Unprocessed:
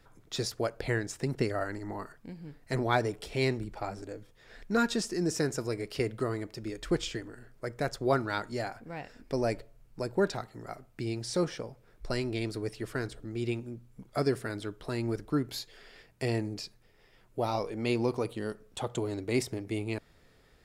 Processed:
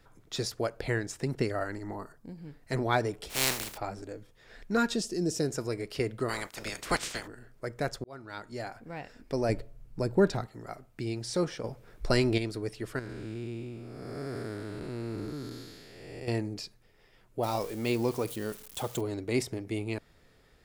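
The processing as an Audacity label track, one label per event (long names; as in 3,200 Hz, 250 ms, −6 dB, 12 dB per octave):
1.950000	2.380000	parametric band 2,500 Hz −10 dB 1.3 octaves
3.290000	3.760000	compressing power law on the bin magnitudes exponent 0.23
4.950000	5.520000	flat-topped bell 1,400 Hz −8.5 dB
6.280000	7.260000	ceiling on every frequency bin ceiling under each frame's peak by 28 dB
8.040000	8.900000	fade in
9.490000	10.470000	low-shelf EQ 330 Hz +8.5 dB
11.640000	12.380000	clip gain +7 dB
12.990000	16.280000	spectrum smeared in time width 483 ms
17.430000	19.010000	spike at every zero crossing of −34 dBFS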